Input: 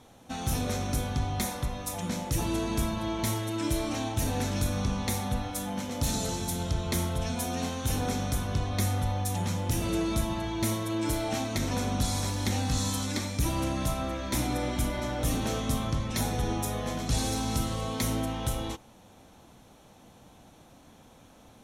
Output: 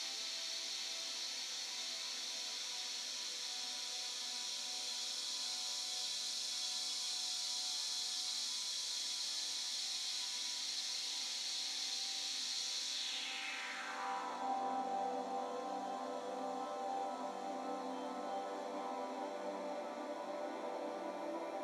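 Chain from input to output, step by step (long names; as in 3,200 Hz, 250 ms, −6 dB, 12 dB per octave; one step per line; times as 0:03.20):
extreme stretch with random phases 12×, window 1.00 s, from 0:11.50
band-pass filter sweep 4,500 Hz → 670 Hz, 0:12.87–0:14.64
high-pass filter 250 Hz 24 dB per octave
level +1 dB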